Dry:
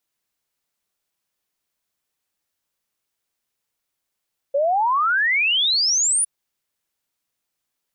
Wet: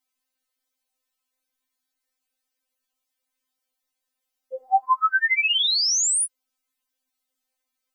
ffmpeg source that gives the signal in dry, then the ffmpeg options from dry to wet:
-f lavfi -i "aevalsrc='0.158*clip(min(t,1.71-t)/0.01,0,1)*sin(2*PI*540*1.71/log(10000/540)*(exp(log(10000/540)*t/1.71)-1))':duration=1.71:sample_rate=44100"
-af "afftfilt=real='re*3.46*eq(mod(b,12),0)':imag='im*3.46*eq(mod(b,12),0)':win_size=2048:overlap=0.75"

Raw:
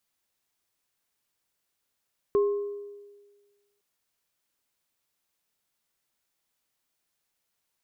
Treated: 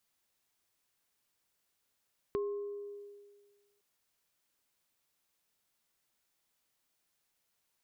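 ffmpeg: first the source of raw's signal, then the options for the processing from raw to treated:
-f lavfi -i "aevalsrc='0.126*pow(10,-3*t/1.46)*sin(2*PI*407*t)+0.0266*pow(10,-3*t/0.79)*sin(2*PI*1070*t)':duration=1.46:sample_rate=44100"
-af "acompressor=threshold=-43dB:ratio=2"

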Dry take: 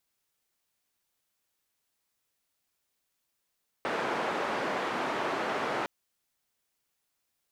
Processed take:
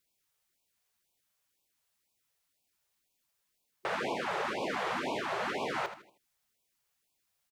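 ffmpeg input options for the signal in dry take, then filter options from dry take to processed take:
-f lavfi -i "anoisesrc=color=white:duration=2.01:sample_rate=44100:seed=1,highpass=frequency=260,lowpass=frequency=1200,volume=-13.5dB"
-filter_complex "[0:a]alimiter=limit=-23.5dB:level=0:latency=1:release=89,asplit=2[link_01][link_02];[link_02]aecho=0:1:79|158|237|316:0.266|0.104|0.0405|0.0158[link_03];[link_01][link_03]amix=inputs=2:normalize=0,afftfilt=real='re*(1-between(b*sr/1024,240*pow(1600/240,0.5+0.5*sin(2*PI*2*pts/sr))/1.41,240*pow(1600/240,0.5+0.5*sin(2*PI*2*pts/sr))*1.41))':imag='im*(1-between(b*sr/1024,240*pow(1600/240,0.5+0.5*sin(2*PI*2*pts/sr))/1.41,240*pow(1600/240,0.5+0.5*sin(2*PI*2*pts/sr))*1.41))':win_size=1024:overlap=0.75"

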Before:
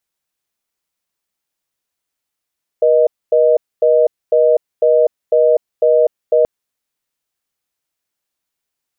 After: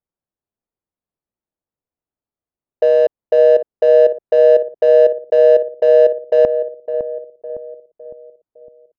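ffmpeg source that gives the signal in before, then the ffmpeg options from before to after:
-f lavfi -i "aevalsrc='0.282*(sin(2*PI*480*t)+sin(2*PI*620*t))*clip(min(mod(t,0.5),0.25-mod(t,0.5))/0.005,0,1)':duration=3.63:sample_rate=44100"
-filter_complex "[0:a]adynamicsmooth=sensitivity=1:basefreq=800,asplit=2[link_01][link_02];[link_02]adelay=558,lowpass=frequency=820:poles=1,volume=-8dB,asplit=2[link_03][link_04];[link_04]adelay=558,lowpass=frequency=820:poles=1,volume=0.52,asplit=2[link_05][link_06];[link_06]adelay=558,lowpass=frequency=820:poles=1,volume=0.52,asplit=2[link_07][link_08];[link_08]adelay=558,lowpass=frequency=820:poles=1,volume=0.52,asplit=2[link_09][link_10];[link_10]adelay=558,lowpass=frequency=820:poles=1,volume=0.52,asplit=2[link_11][link_12];[link_12]adelay=558,lowpass=frequency=820:poles=1,volume=0.52[link_13];[link_03][link_05][link_07][link_09][link_11][link_13]amix=inputs=6:normalize=0[link_14];[link_01][link_14]amix=inputs=2:normalize=0"

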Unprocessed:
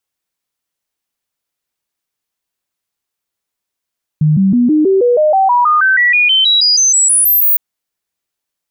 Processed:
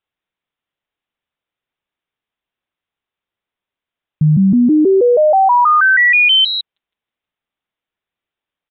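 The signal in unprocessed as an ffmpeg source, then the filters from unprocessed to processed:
-f lavfi -i "aevalsrc='0.447*clip(min(mod(t,0.16),0.16-mod(t,0.16))/0.005,0,1)*sin(2*PI*153*pow(2,floor(t/0.16)/3)*mod(t,0.16))':duration=3.36:sample_rate=44100"
-af "aresample=8000,aresample=44100"

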